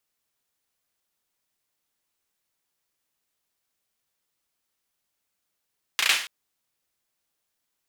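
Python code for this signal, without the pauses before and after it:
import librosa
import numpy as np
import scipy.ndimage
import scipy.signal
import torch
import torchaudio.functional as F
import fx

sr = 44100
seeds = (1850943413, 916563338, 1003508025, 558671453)

y = fx.drum_clap(sr, seeds[0], length_s=0.28, bursts=4, spacing_ms=34, hz=2400.0, decay_s=0.47)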